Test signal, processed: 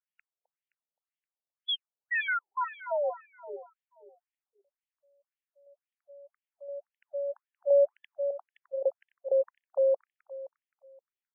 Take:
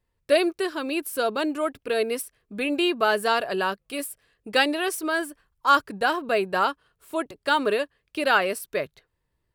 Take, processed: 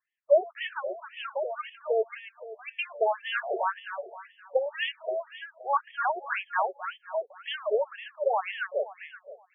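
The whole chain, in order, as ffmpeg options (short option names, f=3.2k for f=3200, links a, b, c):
-af "aecho=1:1:261|522|783|1044|1305:0.335|0.147|0.0648|0.0285|0.0126,afftfilt=real='re*between(b*sr/1024,540*pow(2500/540,0.5+0.5*sin(2*PI*1.9*pts/sr))/1.41,540*pow(2500/540,0.5+0.5*sin(2*PI*1.9*pts/sr))*1.41)':imag='im*between(b*sr/1024,540*pow(2500/540,0.5+0.5*sin(2*PI*1.9*pts/sr))/1.41,540*pow(2500/540,0.5+0.5*sin(2*PI*1.9*pts/sr))*1.41)':win_size=1024:overlap=0.75"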